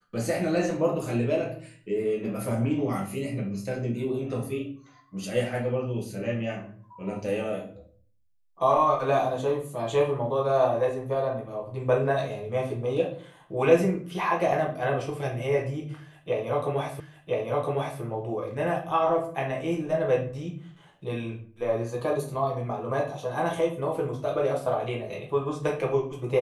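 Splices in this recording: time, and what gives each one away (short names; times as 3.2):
17 repeat of the last 1.01 s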